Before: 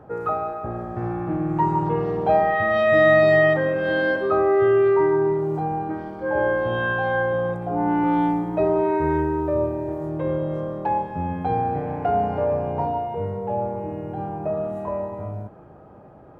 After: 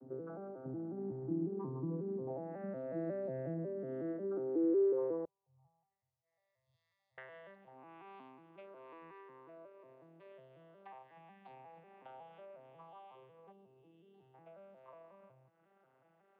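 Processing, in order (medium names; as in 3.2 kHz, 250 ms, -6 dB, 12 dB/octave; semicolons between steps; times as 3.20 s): vocoder on a broken chord major triad, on C3, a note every 182 ms; 5.25–7.18 s: inverse Chebyshev band-stop 170–3200 Hz, stop band 40 dB; 13.52–14.34 s: time-frequency box 480–2600 Hz -15 dB; compression 2:1, threshold -38 dBFS, peak gain reduction 13.5 dB; band-pass sweep 280 Hz -> 2.9 kHz, 4.54–6.31 s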